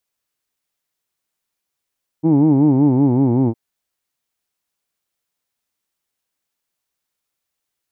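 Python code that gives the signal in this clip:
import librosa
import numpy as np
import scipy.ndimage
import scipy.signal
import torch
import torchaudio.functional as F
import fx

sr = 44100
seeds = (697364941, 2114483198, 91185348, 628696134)

y = fx.vowel(sr, seeds[0], length_s=1.31, word="who'd", hz=153.0, glide_st=-4.0, vibrato_hz=5.3, vibrato_st=1.4)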